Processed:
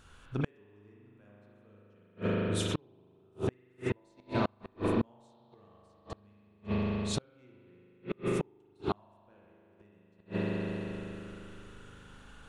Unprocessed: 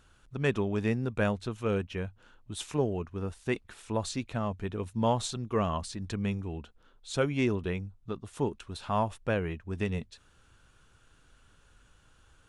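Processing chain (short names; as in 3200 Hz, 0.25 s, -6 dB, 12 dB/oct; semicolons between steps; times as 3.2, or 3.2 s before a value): flange 1.1 Hz, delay 6.9 ms, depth 5.7 ms, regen -84%; dynamic EQ 340 Hz, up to +7 dB, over -52 dBFS, Q 4.8; spring tank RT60 3.2 s, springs 39 ms, chirp 30 ms, DRR -5.5 dB; in parallel at -3 dB: compressor 6:1, threshold -39 dBFS, peak gain reduction 17.5 dB; on the sum: flipped gate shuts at -21 dBFS, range -37 dB; gain +3 dB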